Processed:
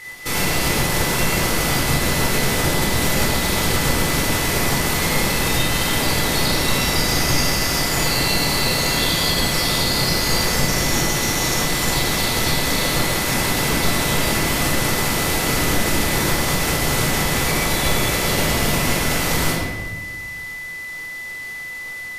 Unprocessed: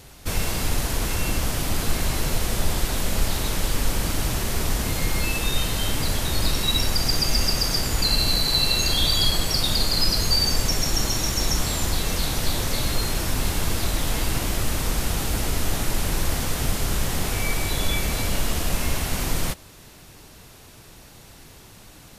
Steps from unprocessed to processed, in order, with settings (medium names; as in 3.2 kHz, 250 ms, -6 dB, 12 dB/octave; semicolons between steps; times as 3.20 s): spectral peaks clipped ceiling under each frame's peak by 21 dB; compression 3:1, threshold -22 dBFS, peak gain reduction 7.5 dB; whistle 2 kHz -32 dBFS; reverberation RT60 1.4 s, pre-delay 16 ms, DRR -5 dB; trim -3 dB